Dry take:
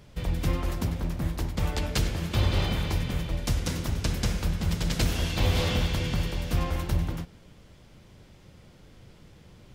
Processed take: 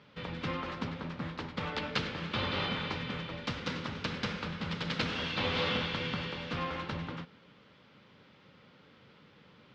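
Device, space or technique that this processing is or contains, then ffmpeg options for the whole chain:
kitchen radio: -af "highpass=230,equalizer=frequency=350:width_type=q:width=4:gain=-8,equalizer=frequency=680:width_type=q:width=4:gain=-8,equalizer=frequency=1300:width_type=q:width=4:gain=4,lowpass=frequency=4100:width=0.5412,lowpass=frequency=4100:width=1.3066"

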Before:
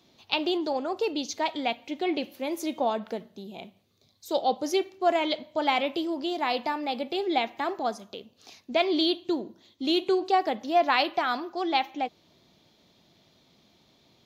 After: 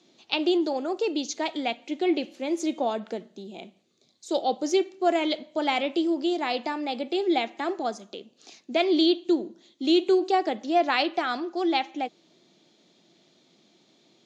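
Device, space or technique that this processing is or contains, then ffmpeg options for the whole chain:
television speaker: -af "highpass=frequency=160:width=0.5412,highpass=frequency=160:width=1.3066,equalizer=frequency=340:width_type=q:width=4:gain=6,equalizer=frequency=1000:width_type=q:width=4:gain=-5,equalizer=frequency=7100:width_type=q:width=4:gain=7,lowpass=frequency=8400:width=0.5412,lowpass=frequency=8400:width=1.3066"

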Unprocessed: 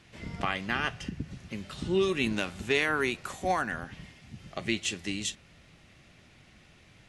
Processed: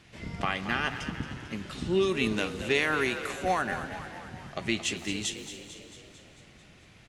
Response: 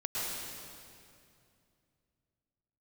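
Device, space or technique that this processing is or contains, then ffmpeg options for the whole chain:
saturated reverb return: -filter_complex "[0:a]asplit=2[link_01][link_02];[1:a]atrim=start_sample=2205[link_03];[link_02][link_03]afir=irnorm=-1:irlink=0,asoftclip=type=tanh:threshold=-30dB,volume=-14dB[link_04];[link_01][link_04]amix=inputs=2:normalize=0,asplit=8[link_05][link_06][link_07][link_08][link_09][link_10][link_11][link_12];[link_06]adelay=223,afreqshift=46,volume=-11.5dB[link_13];[link_07]adelay=446,afreqshift=92,volume=-15.9dB[link_14];[link_08]adelay=669,afreqshift=138,volume=-20.4dB[link_15];[link_09]adelay=892,afreqshift=184,volume=-24.8dB[link_16];[link_10]adelay=1115,afreqshift=230,volume=-29.2dB[link_17];[link_11]adelay=1338,afreqshift=276,volume=-33.7dB[link_18];[link_12]adelay=1561,afreqshift=322,volume=-38.1dB[link_19];[link_05][link_13][link_14][link_15][link_16][link_17][link_18][link_19]amix=inputs=8:normalize=0"

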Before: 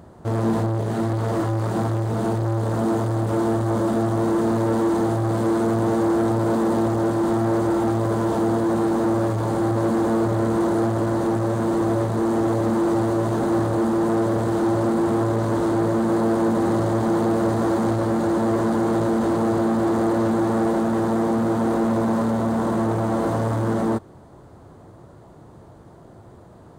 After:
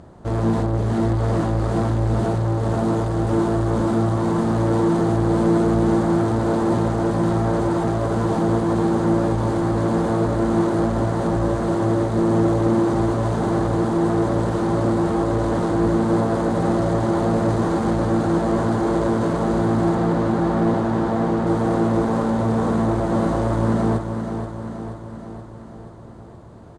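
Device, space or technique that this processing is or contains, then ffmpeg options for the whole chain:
octave pedal: -filter_complex "[0:a]lowpass=9200,asplit=2[link_01][link_02];[link_02]asetrate=22050,aresample=44100,atempo=2,volume=-6dB[link_03];[link_01][link_03]amix=inputs=2:normalize=0,asettb=1/sr,asplit=3[link_04][link_05][link_06];[link_04]atrim=end=19.954[link_07];[link_05]atrim=start=19.95:end=21.47,asetpts=PTS-STARTPTS,afade=type=in:duration=0.004:curve=qsin,afade=type=out:start_time=1.516:duration=0.004:curve=qsin,acrossover=split=5000[link_08][link_09];[link_09]acompressor=threshold=-56dB:ratio=4:attack=1:release=60[link_10];[link_08][link_10]amix=inputs=2:normalize=0[link_11];[link_06]atrim=start=21.466[link_12];[link_07][link_11]acrossfade=duration=0.004:curve1=hsin:curve2=qsin[link_13];[link_13][link_12]acrossfade=duration=0.004:curve1=qsin:curve2=hsin,aecho=1:1:478|956|1434|1912|2390|2868|3346:0.398|0.235|0.139|0.0818|0.0482|0.0285|0.0168"

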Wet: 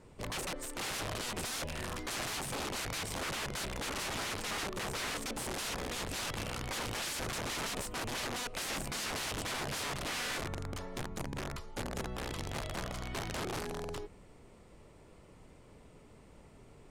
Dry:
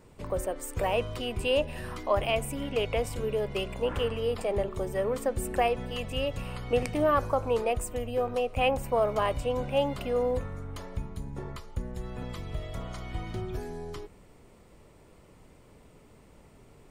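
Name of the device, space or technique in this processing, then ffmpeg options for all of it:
overflowing digital effects unit: -af "aeval=exprs='(mod(33.5*val(0)+1,2)-1)/33.5':channel_layout=same,lowpass=11000,volume=-1.5dB"

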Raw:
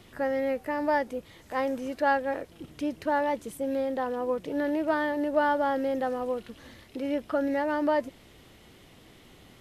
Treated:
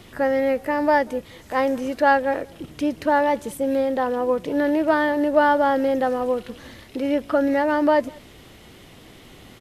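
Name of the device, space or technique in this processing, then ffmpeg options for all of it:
ducked delay: -filter_complex "[0:a]asplit=3[link_01][link_02][link_03];[link_02]adelay=188,volume=-4dB[link_04];[link_03]apad=whole_len=431787[link_05];[link_04][link_05]sidechaincompress=threshold=-50dB:ratio=4:attack=16:release=1070[link_06];[link_01][link_06]amix=inputs=2:normalize=0,volume=7.5dB"

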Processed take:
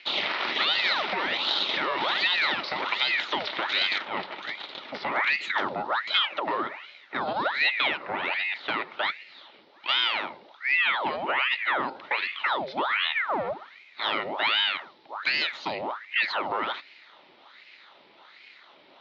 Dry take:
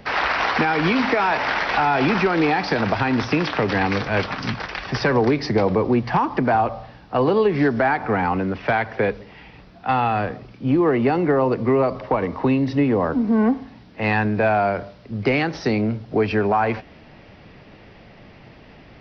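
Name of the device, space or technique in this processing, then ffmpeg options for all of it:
voice changer toy: -filter_complex "[0:a]aeval=exprs='val(0)*sin(2*PI*1300*n/s+1300*0.8/1.3*sin(2*PI*1.3*n/s))':channel_layout=same,highpass=470,equalizer=frequency=470:width_type=q:width=4:gain=-9,equalizer=frequency=720:width_type=q:width=4:gain=-6,equalizer=frequency=1100:width_type=q:width=4:gain=-6,equalizer=frequency=1600:width_type=q:width=4:gain=-8,equalizer=frequency=2600:width_type=q:width=4:gain=-4,equalizer=frequency=3800:width_type=q:width=4:gain=6,lowpass=frequency=4300:width=0.5412,lowpass=frequency=4300:width=1.3066,asettb=1/sr,asplit=3[link_01][link_02][link_03];[link_01]atrim=end=3.984[link_04];[link_02]atrim=start=3.98:end=5.12,asetpts=PTS-STARTPTS,afade=type=in:duration=0.004:curve=qsin,afade=type=out:start_time=1.136:duration=0.004:curve=qsin,aemphasis=mode=reproduction:type=75kf[link_05];[link_03]atrim=start=5.116[link_06];[link_04][link_05]acrossfade=duration=0.004:curve1=hsin:curve2=qsin[link_07];[link_07][link_06]acrossfade=duration=0.004:curve1=qsin:curve2=hsin"

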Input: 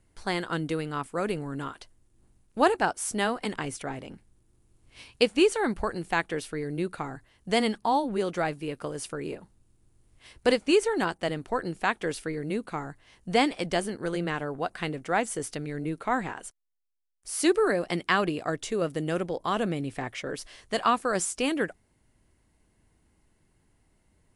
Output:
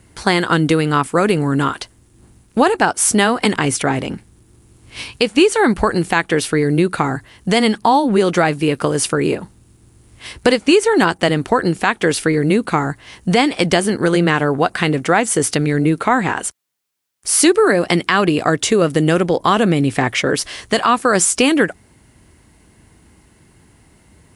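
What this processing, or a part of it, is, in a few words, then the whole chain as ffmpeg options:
mastering chain: -af "highpass=58,equalizer=frequency=600:width_type=o:width=0.77:gain=-3,acompressor=threshold=-30dB:ratio=3,alimiter=level_in=20dB:limit=-1dB:release=50:level=0:latency=1,volume=-1dB"

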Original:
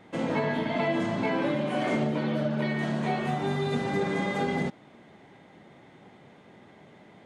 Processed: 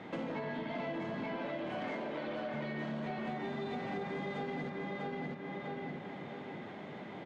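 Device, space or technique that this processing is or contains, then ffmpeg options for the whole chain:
AM radio: -filter_complex "[0:a]asettb=1/sr,asplit=3[link_01][link_02][link_03];[link_01]atrim=end=1.364[link_04];[link_02]atrim=start=1.36:end=2.54,asetpts=PTS-STARTPTS,afade=type=in:duration=0.004:curve=qsin,afade=type=out:start_time=1.176:duration=0.004:curve=qsin,highpass=390[link_05];[link_03]atrim=start=2.536[link_06];[link_04][link_05]acrossfade=duration=0.004:curve1=hsin:curve2=qsin[link_07];[link_07][link_06]acrossfade=duration=0.004:curve1=qsin:curve2=hsin,highpass=120,lowpass=4400,asplit=2[link_08][link_09];[link_09]adelay=646,lowpass=frequency=4500:poles=1,volume=-4.5dB,asplit=2[link_10][link_11];[link_11]adelay=646,lowpass=frequency=4500:poles=1,volume=0.28,asplit=2[link_12][link_13];[link_13]adelay=646,lowpass=frequency=4500:poles=1,volume=0.28,asplit=2[link_14][link_15];[link_15]adelay=646,lowpass=frequency=4500:poles=1,volume=0.28[link_16];[link_08][link_10][link_12][link_14][link_16]amix=inputs=5:normalize=0,acompressor=threshold=-43dB:ratio=5,asoftclip=type=tanh:threshold=-36dB,volume=6dB"

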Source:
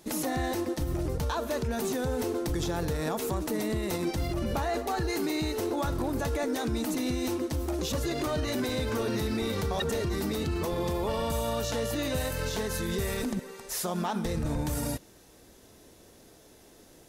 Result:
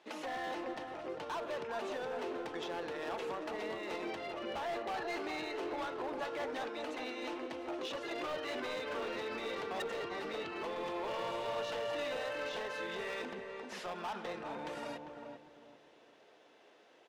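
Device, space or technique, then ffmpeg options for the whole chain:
megaphone: -filter_complex "[0:a]asettb=1/sr,asplit=3[link_01][link_02][link_03];[link_01]atrim=end=6.214[link_04];[link_02]atrim=start=6.21:end=7.46,asetpts=PTS-STARTPTS,afade=type=in:duration=0.004:curve=qsin,afade=type=out:start_time=1.246:duration=0.004:curve=qsin,highpass=frequency=240:width=0.5412,highpass=frequency=240:width=1.3066[link_05];[link_03]atrim=start=7.456[link_06];[link_04][link_05]acrossfade=duration=0.004:curve1=hsin:curve2=qsin[link_07];[link_07][link_06]acrossfade=duration=0.004:curve1=qsin:curve2=hsin,highpass=580,lowpass=2600,equalizer=frequency=2900:width_type=o:width=0.58:gain=5.5,asoftclip=type=hard:threshold=-33.5dB,asplit=2[link_08][link_09];[link_09]adelay=398,lowpass=frequency=810:poles=1,volume=-3dB,asplit=2[link_10][link_11];[link_11]adelay=398,lowpass=frequency=810:poles=1,volume=0.35,asplit=2[link_12][link_13];[link_13]adelay=398,lowpass=frequency=810:poles=1,volume=0.35,asplit=2[link_14][link_15];[link_15]adelay=398,lowpass=frequency=810:poles=1,volume=0.35,asplit=2[link_16][link_17];[link_17]adelay=398,lowpass=frequency=810:poles=1,volume=0.35[link_18];[link_08][link_10][link_12][link_14][link_16][link_18]amix=inputs=6:normalize=0,volume=-2.5dB"

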